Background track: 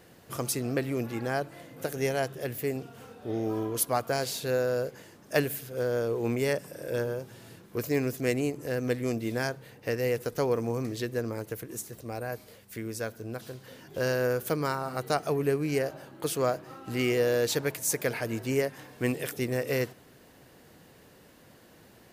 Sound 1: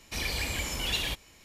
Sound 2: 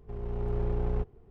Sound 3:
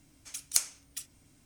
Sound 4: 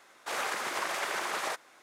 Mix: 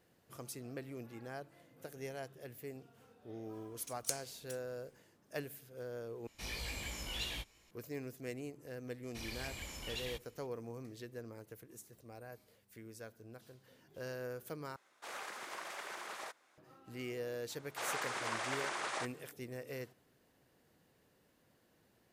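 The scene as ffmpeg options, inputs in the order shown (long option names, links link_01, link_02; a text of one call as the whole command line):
ffmpeg -i bed.wav -i cue0.wav -i cue1.wav -i cue2.wav -i cue3.wav -filter_complex "[1:a]asplit=2[link_01][link_02];[4:a]asplit=2[link_03][link_04];[0:a]volume=-16dB[link_05];[link_01]flanger=delay=16.5:depth=3.2:speed=2.9[link_06];[link_04]aresample=22050,aresample=44100[link_07];[link_05]asplit=3[link_08][link_09][link_10];[link_08]atrim=end=6.274[link_11];[link_06]atrim=end=1.44,asetpts=PTS-STARTPTS,volume=-7.5dB[link_12];[link_09]atrim=start=7.706:end=14.764[link_13];[link_03]atrim=end=1.82,asetpts=PTS-STARTPTS,volume=-12.5dB[link_14];[link_10]atrim=start=16.576[link_15];[3:a]atrim=end=1.45,asetpts=PTS-STARTPTS,volume=-11dB,afade=type=in:duration=0.004:curve=hsin,afade=type=out:start_time=1.446:duration=0.004:curve=hsin,adelay=155673S[link_16];[link_02]atrim=end=1.44,asetpts=PTS-STARTPTS,volume=-13.5dB,afade=type=in:duration=0.004:curve=hsin,afade=type=out:start_time=1.436:duration=0.004:curve=hsin,adelay=9030[link_17];[link_07]atrim=end=1.82,asetpts=PTS-STARTPTS,volume=-6dB,afade=type=in:duration=0.004:curve=hsin,afade=type=out:start_time=1.816:duration=0.004:curve=hsin,adelay=17500[link_18];[link_11][link_12]acrossfade=duration=0.004:curve1=hsin:curve2=hsin[link_19];[link_19][link_13]acrossfade=duration=0.004:curve1=hsin:curve2=hsin[link_20];[link_20][link_14]acrossfade=duration=0.004:curve1=hsin:curve2=hsin[link_21];[link_21][link_15]acrossfade=duration=0.004:curve1=hsin:curve2=hsin[link_22];[link_22][link_16][link_17][link_18]amix=inputs=4:normalize=0" out.wav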